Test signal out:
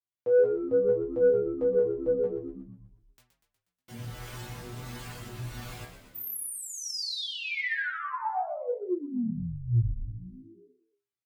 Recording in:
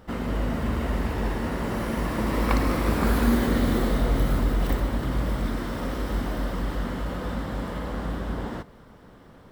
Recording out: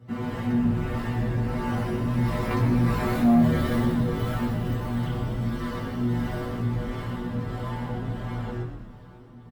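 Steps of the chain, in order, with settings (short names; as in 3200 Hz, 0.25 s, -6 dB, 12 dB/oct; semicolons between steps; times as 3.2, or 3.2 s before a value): HPF 94 Hz 24 dB/oct; tone controls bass +9 dB, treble -4 dB; harmonic tremolo 1.5 Hz, depth 50%, crossover 430 Hz; metallic resonator 120 Hz, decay 0.4 s, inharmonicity 0.002; chorus 1.8 Hz, delay 17 ms, depth 2.1 ms; in parallel at -7.5 dB: sine folder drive 7 dB, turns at -21 dBFS; on the sum: frequency-shifting echo 0.121 s, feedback 60%, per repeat -75 Hz, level -9 dB; gain +6 dB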